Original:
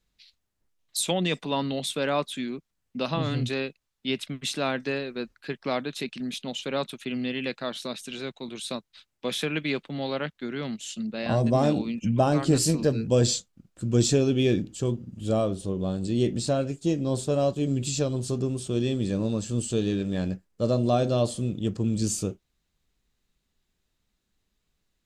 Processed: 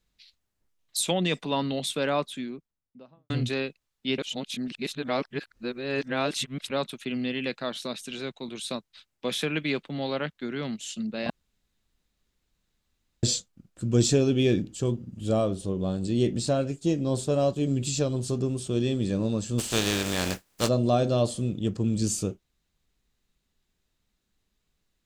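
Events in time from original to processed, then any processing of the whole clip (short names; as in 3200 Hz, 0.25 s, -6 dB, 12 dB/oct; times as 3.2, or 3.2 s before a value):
2–3.3 studio fade out
4.18–6.7 reverse
11.3–13.23 room tone
19.58–20.67 spectral contrast lowered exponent 0.44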